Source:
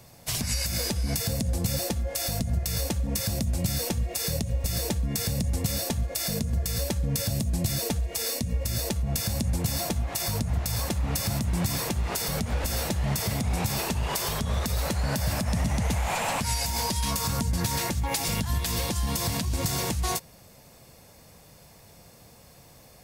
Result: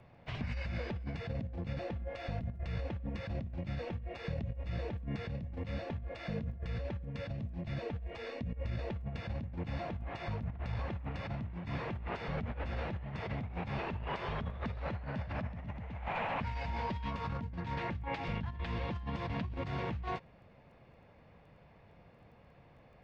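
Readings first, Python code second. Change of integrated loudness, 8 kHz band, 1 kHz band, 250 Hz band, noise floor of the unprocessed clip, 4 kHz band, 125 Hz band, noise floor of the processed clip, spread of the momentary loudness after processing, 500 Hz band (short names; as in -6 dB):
-12.0 dB, under -40 dB, -7.5 dB, -10.0 dB, -53 dBFS, -19.5 dB, -10.0 dB, -60 dBFS, 3 LU, -7.5 dB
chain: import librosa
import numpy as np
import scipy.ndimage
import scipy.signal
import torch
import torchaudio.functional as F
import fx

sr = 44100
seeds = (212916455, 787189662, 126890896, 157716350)

y = scipy.signal.sosfilt(scipy.signal.butter(4, 2700.0, 'lowpass', fs=sr, output='sos'), x)
y = fx.over_compress(y, sr, threshold_db=-29.0, ratio=-0.5)
y = fx.dmg_crackle(y, sr, seeds[0], per_s=10.0, level_db=-55.0)
y = F.gain(torch.from_numpy(y), -8.0).numpy()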